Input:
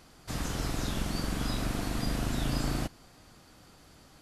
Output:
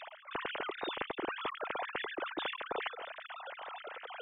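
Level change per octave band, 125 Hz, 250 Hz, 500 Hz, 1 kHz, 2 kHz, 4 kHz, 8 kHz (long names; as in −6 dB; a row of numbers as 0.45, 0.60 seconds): −29.5 dB, −13.5 dB, 0.0 dB, +2.0 dB, +2.5 dB, −3.0 dB, below −40 dB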